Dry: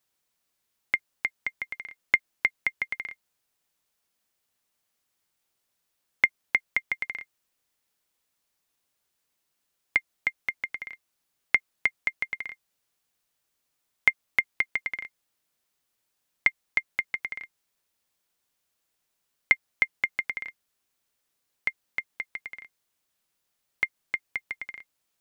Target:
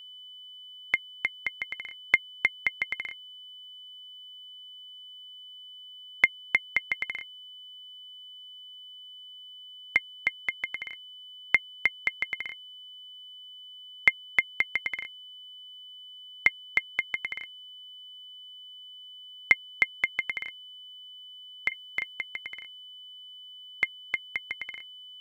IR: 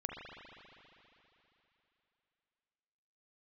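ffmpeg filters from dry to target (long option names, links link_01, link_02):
-filter_complex "[0:a]asettb=1/sr,asplit=3[link_01][link_02][link_03];[link_01]atrim=end=21.684[link_04];[link_02]atrim=start=21.68:end=22.14,asetpts=PTS-STARTPTS,afade=type=in:duration=0.004:curve=qsin,afade=type=out:start_time=0.456:duration=0.004:curve=qsin,asplit=2[link_05][link_06];[link_06]adelay=37,volume=-4dB[link_07];[link_05][link_07]amix=inputs=2:normalize=0,atrim=end_sample=20286[link_08];[link_03]atrim=start=22.136[link_09];[link_04][link_08]acrossfade=duration=0.004:curve1=hsin:curve2=qsin[link_10];[link_10][link_09]acrossfade=duration=0.004:curve1=qsin:curve2=hsin,aeval=exprs='val(0)+0.00631*sin(2*PI*3000*n/s)':channel_layout=same"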